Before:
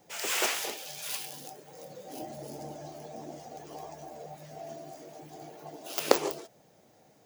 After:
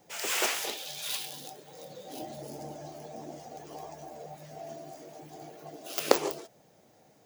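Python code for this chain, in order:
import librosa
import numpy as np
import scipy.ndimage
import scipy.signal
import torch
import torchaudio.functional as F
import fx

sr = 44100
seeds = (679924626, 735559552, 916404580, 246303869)

y = fx.peak_eq(x, sr, hz=3700.0, db=8.0, octaves=0.44, at=(0.67, 2.41))
y = fx.notch(y, sr, hz=910.0, q=5.5, at=(5.52, 6.11))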